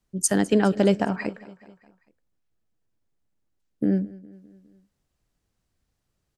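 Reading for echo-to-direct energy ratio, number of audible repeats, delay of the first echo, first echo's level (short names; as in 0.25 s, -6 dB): -19.0 dB, 3, 0.205 s, -20.5 dB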